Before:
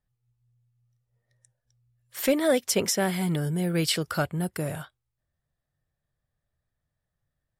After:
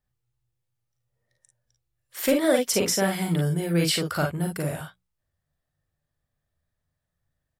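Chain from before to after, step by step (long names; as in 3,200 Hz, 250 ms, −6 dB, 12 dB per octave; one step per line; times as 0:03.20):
mains-hum notches 60/120/180 Hz
ambience of single reflections 41 ms −5 dB, 53 ms −7 dB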